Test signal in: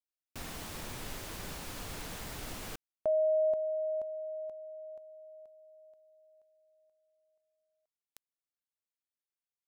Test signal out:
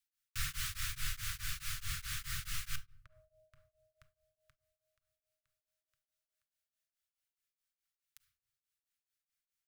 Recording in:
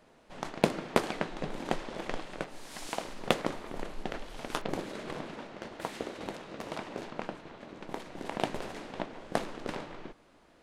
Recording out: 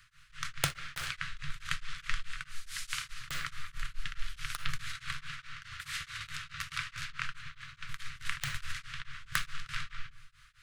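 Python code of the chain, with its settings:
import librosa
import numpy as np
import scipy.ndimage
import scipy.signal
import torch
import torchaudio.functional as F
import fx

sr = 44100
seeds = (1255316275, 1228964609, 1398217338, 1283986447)

y = scipy.signal.sosfilt(scipy.signal.cheby2(5, 40, [190.0, 890.0], 'bandstop', fs=sr, output='sos'), x)
y = fx.rider(y, sr, range_db=5, speed_s=2.0)
y = (np.mod(10.0 ** (18.0 / 20.0) * y + 1.0, 2.0) - 1.0) / 10.0 ** (18.0 / 20.0)
y = fx.room_shoebox(y, sr, seeds[0], volume_m3=790.0, walls='furnished', distance_m=0.75)
y = y * np.abs(np.cos(np.pi * 4.7 * np.arange(len(y)) / sr))
y = F.gain(torch.from_numpy(y), 6.0).numpy()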